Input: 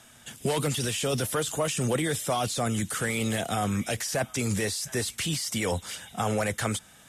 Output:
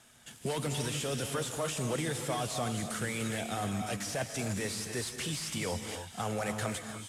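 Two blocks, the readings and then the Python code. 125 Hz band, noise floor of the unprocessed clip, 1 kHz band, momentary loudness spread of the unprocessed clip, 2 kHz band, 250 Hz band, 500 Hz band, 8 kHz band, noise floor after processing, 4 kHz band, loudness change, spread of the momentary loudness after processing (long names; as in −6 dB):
−6.0 dB, −54 dBFS, −5.5 dB, 3 LU, −6.0 dB, −6.0 dB, −6.5 dB, −6.0 dB, −53 dBFS, −5.5 dB, −6.0 dB, 3 LU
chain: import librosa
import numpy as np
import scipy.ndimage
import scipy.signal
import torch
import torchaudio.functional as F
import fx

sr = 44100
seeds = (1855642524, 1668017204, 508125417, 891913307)

y = fx.cvsd(x, sr, bps=64000)
y = fx.rev_gated(y, sr, seeds[0], gate_ms=330, shape='rising', drr_db=5.5)
y = y * 10.0 ** (-7.0 / 20.0)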